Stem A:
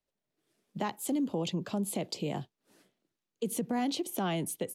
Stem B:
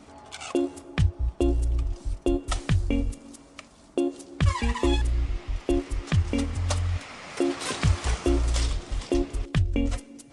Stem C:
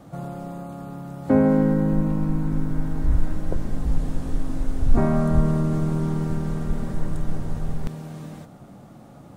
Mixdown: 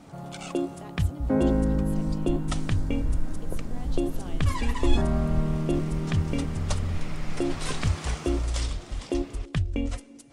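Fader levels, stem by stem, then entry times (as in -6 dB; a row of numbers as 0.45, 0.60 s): -12.5, -3.0, -6.5 dB; 0.00, 0.00, 0.00 s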